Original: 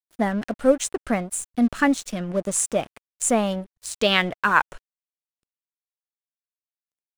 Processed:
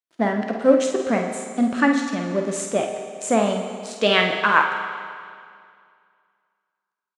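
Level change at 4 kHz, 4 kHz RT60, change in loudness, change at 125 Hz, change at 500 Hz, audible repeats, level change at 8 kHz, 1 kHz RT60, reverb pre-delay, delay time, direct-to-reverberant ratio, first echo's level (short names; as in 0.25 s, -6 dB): +1.5 dB, 2.0 s, +1.5 dB, 0.0 dB, +3.5 dB, 1, -6.0 dB, 2.2 s, 8 ms, 49 ms, 2.0 dB, -7.5 dB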